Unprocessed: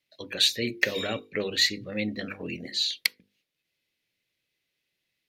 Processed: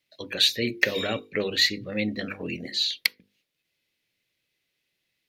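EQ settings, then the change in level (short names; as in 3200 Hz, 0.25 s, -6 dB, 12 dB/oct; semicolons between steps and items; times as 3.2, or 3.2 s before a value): dynamic EQ 7900 Hz, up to -6 dB, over -45 dBFS, Q 1.4; +2.5 dB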